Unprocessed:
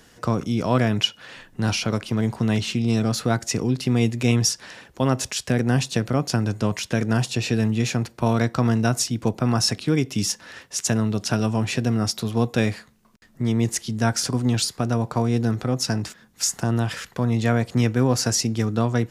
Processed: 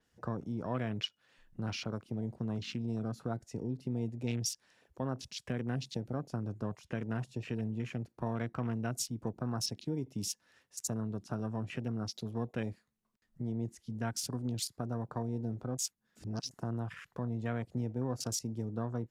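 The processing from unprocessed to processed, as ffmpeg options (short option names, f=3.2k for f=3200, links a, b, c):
-filter_complex "[0:a]asplit=3[a][b][c];[a]atrim=end=15.782[d];[b]atrim=start=15.778:end=16.512,asetpts=PTS-STARTPTS,areverse[e];[c]atrim=start=16.508[f];[d][e]acrossfade=d=0.004:c1=hsin:c2=hsin[g];[g][f]acrossfade=d=0.004:c1=hsin:c2=hsin,acompressor=threshold=-38dB:ratio=1.5,afwtdn=0.0141,adynamicequalizer=threshold=0.00447:dfrequency=6800:dqfactor=0.7:tfrequency=6800:tqfactor=0.7:attack=5:release=100:ratio=0.375:range=2.5:mode=boostabove:tftype=highshelf,volume=-7.5dB"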